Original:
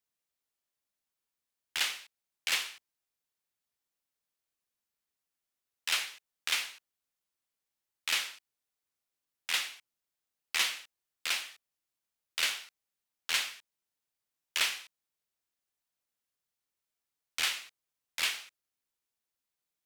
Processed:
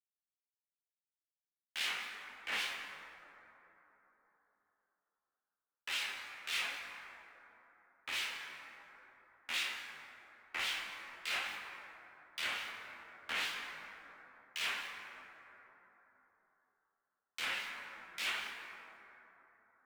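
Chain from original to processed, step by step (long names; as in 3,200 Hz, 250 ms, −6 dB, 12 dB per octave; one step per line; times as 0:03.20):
Butterworth high-pass 170 Hz 96 dB per octave
bass and treble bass +3 dB, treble −13 dB
brickwall limiter −26 dBFS, peak gain reduction 8.5 dB
soft clipping −33 dBFS, distortion −14 dB
log-companded quantiser 6 bits
two-band tremolo in antiphase 3.6 Hz, crossover 2,400 Hz
dense smooth reverb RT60 3.8 s, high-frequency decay 0.35×, pre-delay 0 ms, DRR 1.5 dB
micro pitch shift up and down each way 15 cents
level +9.5 dB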